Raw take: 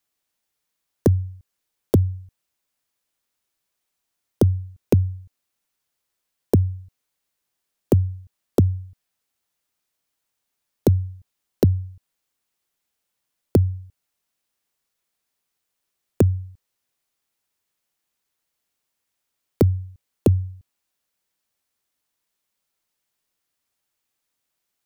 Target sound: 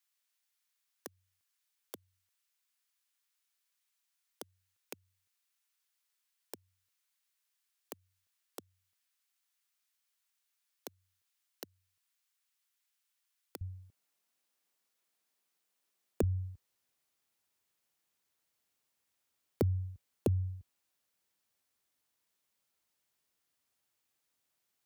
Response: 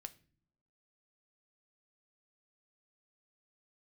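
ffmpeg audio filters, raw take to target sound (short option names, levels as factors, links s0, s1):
-af "alimiter=limit=0.211:level=0:latency=1:release=274,asetnsamples=n=441:p=0,asendcmd='13.61 highpass f 180;16.23 highpass f 47',highpass=1300,acompressor=threshold=0.0631:ratio=4,volume=0.708"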